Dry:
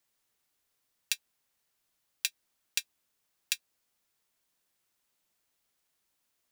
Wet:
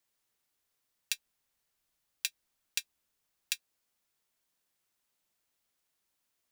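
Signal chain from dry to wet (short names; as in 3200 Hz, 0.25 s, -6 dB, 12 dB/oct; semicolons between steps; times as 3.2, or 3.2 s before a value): 1.12–3.54 low shelf 65 Hz +9 dB; gain -2.5 dB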